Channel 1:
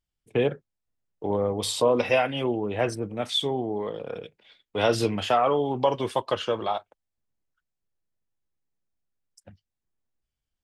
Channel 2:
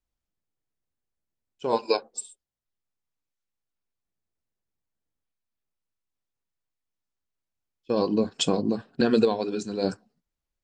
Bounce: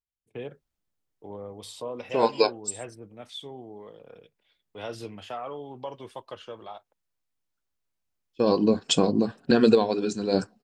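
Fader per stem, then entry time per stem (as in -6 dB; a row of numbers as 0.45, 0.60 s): -14.0, +2.5 dB; 0.00, 0.50 s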